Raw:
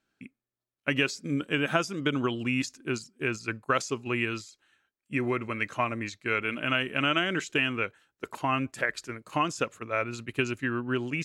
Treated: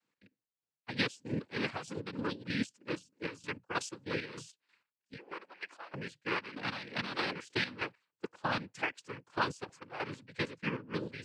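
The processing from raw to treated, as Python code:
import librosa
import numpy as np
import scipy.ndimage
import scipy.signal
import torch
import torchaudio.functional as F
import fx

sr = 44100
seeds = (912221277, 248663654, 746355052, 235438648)

y = fx.ladder_highpass(x, sr, hz=380.0, resonance_pct=25, at=(5.15, 5.93))
y = fx.noise_vocoder(y, sr, seeds[0], bands=8)
y = fx.chopper(y, sr, hz=3.2, depth_pct=65, duty_pct=45)
y = F.gain(torch.from_numpy(y), -5.5).numpy()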